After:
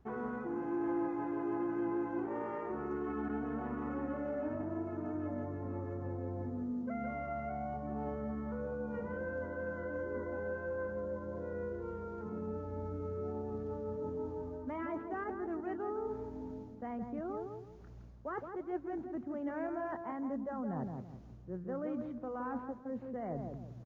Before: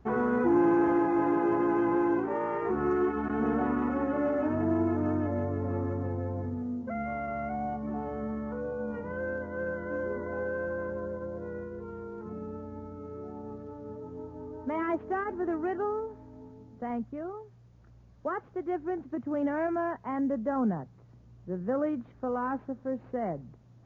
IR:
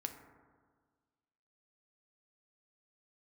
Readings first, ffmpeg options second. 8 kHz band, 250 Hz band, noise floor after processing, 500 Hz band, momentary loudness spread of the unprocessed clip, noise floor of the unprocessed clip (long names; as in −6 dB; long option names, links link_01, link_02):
can't be measured, −8.5 dB, −51 dBFS, −7.5 dB, 15 LU, −56 dBFS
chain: -filter_complex "[0:a]areverse,acompressor=threshold=-41dB:ratio=5,areverse,asplit=2[link_01][link_02];[link_02]adelay=166,lowpass=frequency=920:poles=1,volume=-4dB,asplit=2[link_03][link_04];[link_04]adelay=166,lowpass=frequency=920:poles=1,volume=0.37,asplit=2[link_05][link_06];[link_06]adelay=166,lowpass=frequency=920:poles=1,volume=0.37,asplit=2[link_07][link_08];[link_08]adelay=166,lowpass=frequency=920:poles=1,volume=0.37,asplit=2[link_09][link_10];[link_10]adelay=166,lowpass=frequency=920:poles=1,volume=0.37[link_11];[link_01][link_03][link_05][link_07][link_09][link_11]amix=inputs=6:normalize=0,volume=2.5dB"